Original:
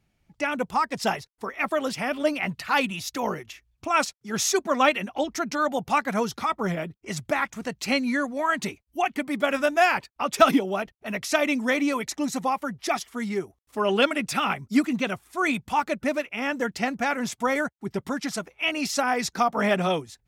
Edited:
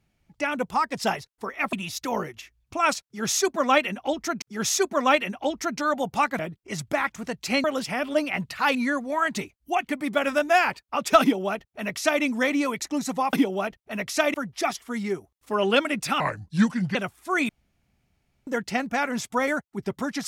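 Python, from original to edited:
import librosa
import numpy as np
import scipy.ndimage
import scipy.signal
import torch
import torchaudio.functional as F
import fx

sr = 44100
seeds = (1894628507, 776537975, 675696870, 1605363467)

y = fx.edit(x, sr, fx.move(start_s=1.73, length_s=1.11, to_s=8.02),
    fx.repeat(start_s=4.16, length_s=1.37, count=2),
    fx.cut(start_s=6.13, length_s=0.64),
    fx.duplicate(start_s=10.48, length_s=1.01, to_s=12.6),
    fx.speed_span(start_s=14.46, length_s=0.57, speed=0.76),
    fx.room_tone_fill(start_s=15.57, length_s=0.98), tone=tone)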